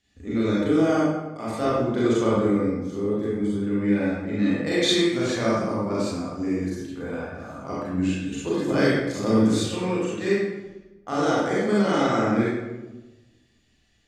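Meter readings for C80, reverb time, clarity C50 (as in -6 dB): 0.5 dB, 1.1 s, -3.0 dB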